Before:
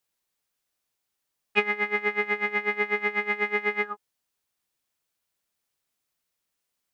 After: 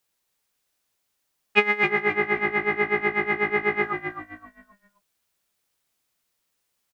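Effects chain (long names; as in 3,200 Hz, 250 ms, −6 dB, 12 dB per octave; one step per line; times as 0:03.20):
0:01.84–0:03.84: low-pass filter 1,800 Hz 6 dB per octave
echo with shifted repeats 263 ms, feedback 31%, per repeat −55 Hz, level −7 dB
level +4.5 dB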